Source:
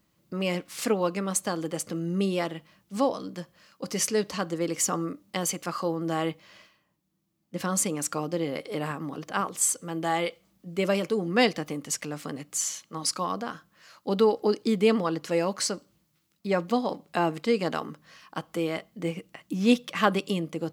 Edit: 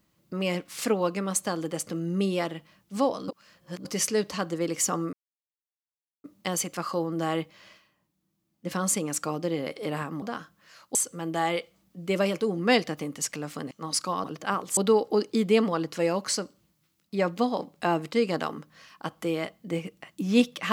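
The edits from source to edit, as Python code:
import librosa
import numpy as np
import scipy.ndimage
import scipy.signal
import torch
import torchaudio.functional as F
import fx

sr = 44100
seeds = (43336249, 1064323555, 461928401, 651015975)

y = fx.edit(x, sr, fx.reverse_span(start_s=3.28, length_s=0.57),
    fx.insert_silence(at_s=5.13, length_s=1.11),
    fx.swap(start_s=9.11, length_s=0.53, other_s=13.36, other_length_s=0.73),
    fx.cut(start_s=12.4, length_s=0.43), tone=tone)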